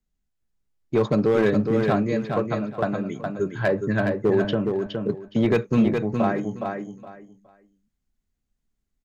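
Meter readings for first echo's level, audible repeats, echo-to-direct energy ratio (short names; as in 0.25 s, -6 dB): -5.0 dB, 3, -5.0 dB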